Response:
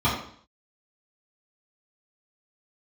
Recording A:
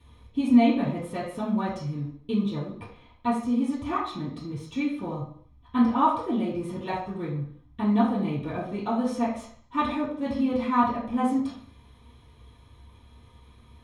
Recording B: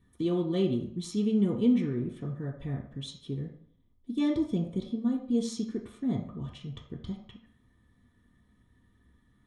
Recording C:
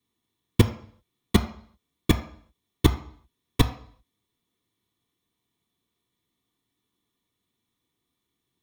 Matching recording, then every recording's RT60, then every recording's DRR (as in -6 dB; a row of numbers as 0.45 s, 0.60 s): A; 0.55 s, 0.55 s, 0.55 s; -10.5 dB, -1.0 dB, 5.5 dB